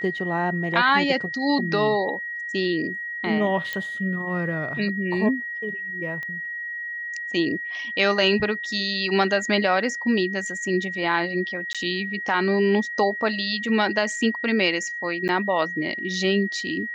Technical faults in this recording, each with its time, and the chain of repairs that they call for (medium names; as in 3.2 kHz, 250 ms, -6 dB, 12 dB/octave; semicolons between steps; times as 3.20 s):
whine 1.9 kHz -29 dBFS
3.73 s: pop -14 dBFS
6.23 s: pop -21 dBFS
11.73–11.75 s: dropout 16 ms
15.28–15.29 s: dropout 9.3 ms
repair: de-click; band-stop 1.9 kHz, Q 30; interpolate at 11.73 s, 16 ms; interpolate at 15.28 s, 9.3 ms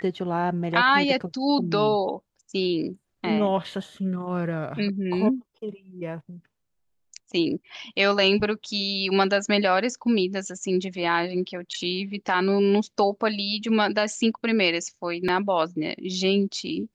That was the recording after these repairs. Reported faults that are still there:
nothing left